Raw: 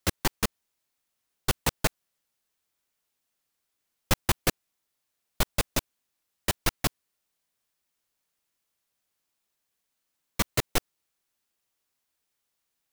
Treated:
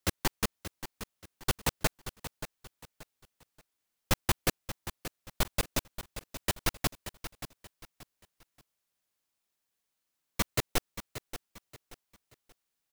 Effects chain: feedback echo 0.58 s, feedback 31%, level -12 dB; gain -3.5 dB

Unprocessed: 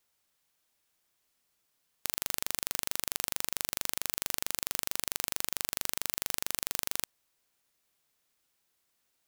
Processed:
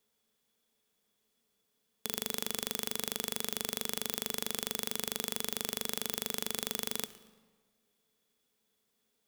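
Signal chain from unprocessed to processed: small resonant body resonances 220/430/3400 Hz, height 16 dB, ringing for 60 ms; on a send at -15 dB: reverb RT60 1.6 s, pre-delay 7 ms; on the sum: warbling echo 0.113 s, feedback 36%, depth 215 cents, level -21.5 dB; gain -3 dB

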